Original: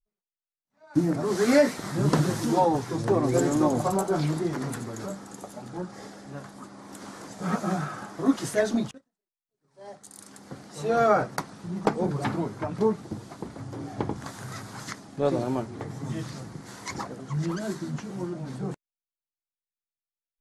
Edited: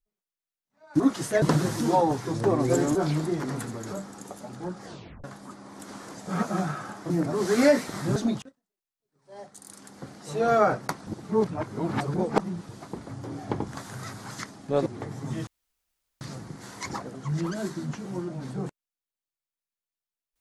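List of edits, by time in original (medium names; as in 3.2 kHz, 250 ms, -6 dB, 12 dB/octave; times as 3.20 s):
1.00–2.06 s: swap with 8.23–8.65 s
3.59–4.08 s: delete
5.98 s: tape stop 0.39 s
11.56–13.18 s: reverse
15.35–15.65 s: delete
16.26 s: insert room tone 0.74 s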